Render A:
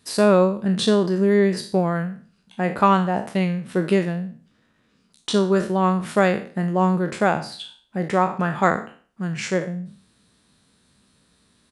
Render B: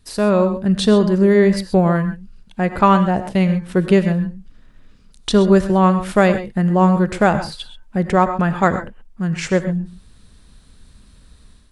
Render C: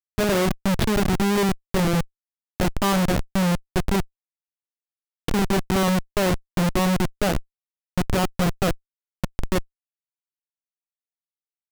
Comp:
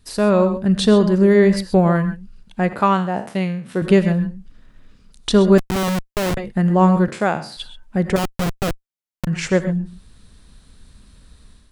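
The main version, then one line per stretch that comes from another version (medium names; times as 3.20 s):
B
2.73–3.82 s: from A
5.58–6.37 s: from C
7.08–7.57 s: from A
8.16–9.27 s: from C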